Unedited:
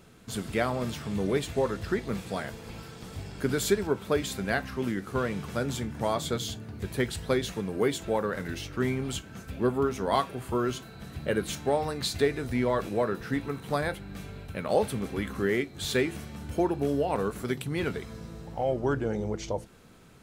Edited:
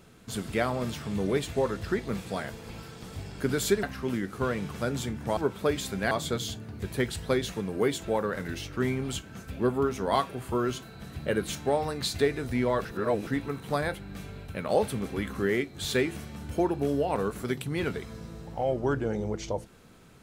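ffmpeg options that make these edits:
ffmpeg -i in.wav -filter_complex "[0:a]asplit=6[link_01][link_02][link_03][link_04][link_05][link_06];[link_01]atrim=end=3.832[link_07];[link_02]atrim=start=4.568:end=6.112[link_08];[link_03]atrim=start=3.828:end=4.572[link_09];[link_04]atrim=start=6.108:end=12.852[link_10];[link_05]atrim=start=12.848:end=13.272,asetpts=PTS-STARTPTS,areverse[link_11];[link_06]atrim=start=13.268[link_12];[link_07][link_08]acrossfade=duration=0.004:curve1=hsin:curve2=hsin[link_13];[link_13][link_09]acrossfade=duration=0.004:curve1=hsin:curve2=hsin[link_14];[link_14][link_10]acrossfade=duration=0.004:curve1=hsin:curve2=hsin[link_15];[link_15][link_11]acrossfade=duration=0.004:curve1=hsin:curve2=hsin[link_16];[link_16][link_12]acrossfade=duration=0.004:curve1=hsin:curve2=hsin" out.wav

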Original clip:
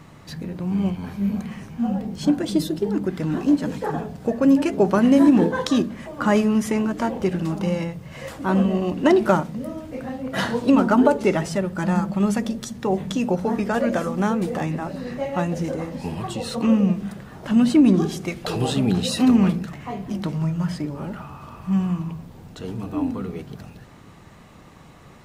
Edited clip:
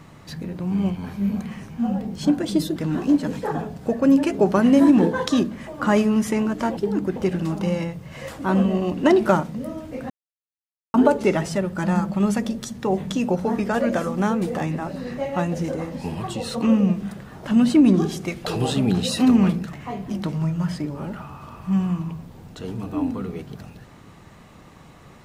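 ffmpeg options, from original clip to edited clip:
ffmpeg -i in.wav -filter_complex "[0:a]asplit=6[link_01][link_02][link_03][link_04][link_05][link_06];[link_01]atrim=end=2.762[link_07];[link_02]atrim=start=3.148:end=7.162[link_08];[link_03]atrim=start=2.758:end=3.152[link_09];[link_04]atrim=start=7.158:end=10.1,asetpts=PTS-STARTPTS,afade=type=out:start_time=2.938:duration=0.004:curve=hsin[link_10];[link_05]atrim=start=10.1:end=10.94,asetpts=PTS-STARTPTS,volume=0[link_11];[link_06]atrim=start=10.94,asetpts=PTS-STARTPTS,afade=type=in:duration=0.004:curve=hsin[link_12];[link_07][link_08]acrossfade=duration=0.004:curve1=hsin:curve2=hsin[link_13];[link_13][link_09]acrossfade=duration=0.004:curve1=hsin:curve2=hsin[link_14];[link_10][link_11][link_12]concat=n=3:v=0:a=1[link_15];[link_14][link_15]acrossfade=duration=0.004:curve1=hsin:curve2=hsin" out.wav

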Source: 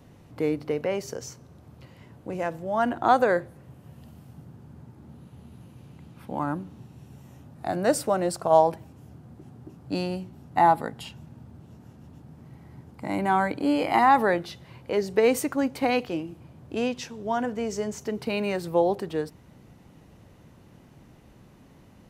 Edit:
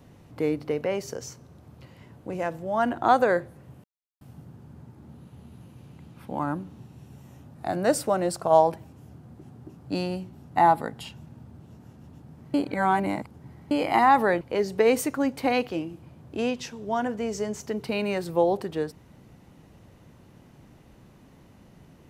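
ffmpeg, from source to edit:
ffmpeg -i in.wav -filter_complex "[0:a]asplit=6[link_01][link_02][link_03][link_04][link_05][link_06];[link_01]atrim=end=3.84,asetpts=PTS-STARTPTS,afade=type=out:start_time=3.836:duration=0.004:curve=hsin[link_07];[link_02]atrim=start=3.84:end=4.21,asetpts=PTS-STARTPTS,volume=0[link_08];[link_03]atrim=start=4.21:end=12.542,asetpts=PTS-STARTPTS,afade=type=in:duration=0.004:curve=hsin[link_09];[link_04]atrim=start=12.538:end=13.712,asetpts=PTS-STARTPTS,areverse[link_10];[link_05]atrim=start=13.708:end=14.412[link_11];[link_06]atrim=start=14.788[link_12];[link_07][link_08][link_09]concat=n=3:v=0:a=1[link_13];[link_13][link_10]acrossfade=duration=0.004:curve1=hsin:curve2=hsin[link_14];[link_14][link_11]acrossfade=duration=0.004:curve1=hsin:curve2=hsin[link_15];[link_15][link_12]acrossfade=duration=0.004:curve1=hsin:curve2=hsin" out.wav

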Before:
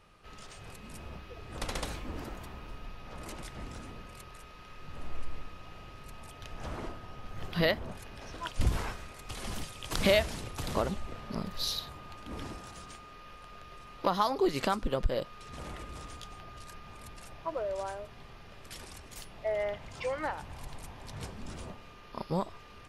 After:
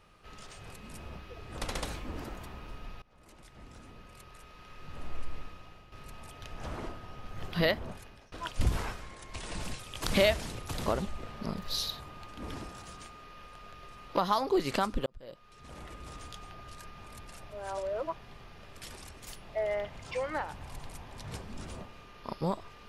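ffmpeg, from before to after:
ffmpeg -i in.wav -filter_complex "[0:a]asplit=9[link_01][link_02][link_03][link_04][link_05][link_06][link_07][link_08][link_09];[link_01]atrim=end=3.02,asetpts=PTS-STARTPTS,afade=type=out:start_time=3.016:duration=0.004:curve=hsin:silence=0.0707946[link_10];[link_02]atrim=start=3.02:end=5.92,asetpts=PTS-STARTPTS,afade=type=in:duration=1.91:silence=0.0707946,afade=type=out:start_time=2.43:duration=0.47:silence=0.316228[link_11];[link_03]atrim=start=5.92:end=8.32,asetpts=PTS-STARTPTS,afade=type=in:duration=0.004:curve=hsin:silence=0.316228,afade=type=out:start_time=1.97:duration=0.43:silence=0.0749894[link_12];[link_04]atrim=start=8.32:end=9.004,asetpts=PTS-STARTPTS,afade=type=in:duration=0.004:curve=hsin:silence=0.0749894[link_13];[link_05]atrim=start=9:end=9.68,asetpts=PTS-STARTPTS,asetrate=37926,aresample=44100[link_14];[link_06]atrim=start=9.676:end=14.95,asetpts=PTS-STARTPTS,afade=type=out:start_time=5.27:duration=0.004:curve=hsin[link_15];[link_07]atrim=start=14.95:end=17.392,asetpts=PTS-STARTPTS,afade=type=in:duration=1.2[link_16];[link_08]atrim=start=17.388:end=18.082,asetpts=PTS-STARTPTS,areverse[link_17];[link_09]atrim=start=18.078[link_18];[link_10][link_11][link_12][link_13]concat=n=4:v=0:a=1[link_19];[link_19][link_14]acrossfade=duration=0.004:curve1=hsin:curve2=hsin[link_20];[link_15][link_16]concat=n=2:v=0:a=1[link_21];[link_20][link_21]acrossfade=duration=0.004:curve1=hsin:curve2=hsin[link_22];[link_22][link_17]acrossfade=duration=0.004:curve1=hsin:curve2=hsin[link_23];[link_23][link_18]acrossfade=duration=0.004:curve1=hsin:curve2=hsin" out.wav

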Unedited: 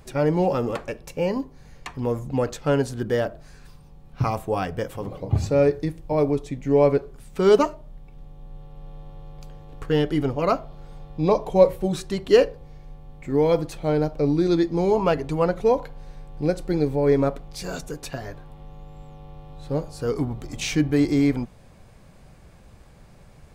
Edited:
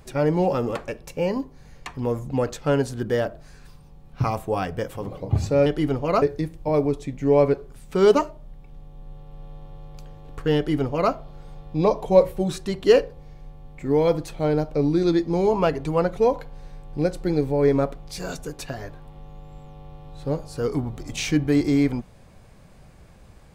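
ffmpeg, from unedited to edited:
ffmpeg -i in.wav -filter_complex "[0:a]asplit=3[link_01][link_02][link_03];[link_01]atrim=end=5.662[link_04];[link_02]atrim=start=9.998:end=10.562[link_05];[link_03]atrim=start=5.658[link_06];[link_04][link_05]acrossfade=duration=0.004:curve1=hsin:curve2=hsin[link_07];[link_07][link_06]acrossfade=duration=0.004:curve1=hsin:curve2=hsin" out.wav

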